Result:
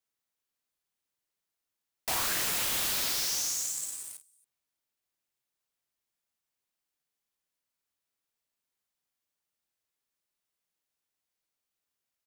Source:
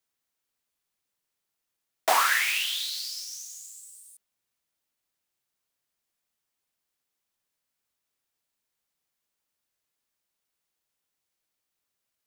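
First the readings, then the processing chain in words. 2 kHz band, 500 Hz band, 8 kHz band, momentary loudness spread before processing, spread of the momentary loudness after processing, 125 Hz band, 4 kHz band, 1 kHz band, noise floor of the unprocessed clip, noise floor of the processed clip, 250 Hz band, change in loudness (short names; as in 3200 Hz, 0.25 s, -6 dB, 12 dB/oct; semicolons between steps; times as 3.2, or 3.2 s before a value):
-9.5 dB, -8.0 dB, +4.0 dB, 20 LU, 11 LU, n/a, -3.0 dB, -11.5 dB, -84 dBFS, under -85 dBFS, +7.5 dB, -3.0 dB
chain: loudspeakers at several distances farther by 18 m -5 dB, 94 m -10 dB; sample leveller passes 3; wavefolder -25 dBFS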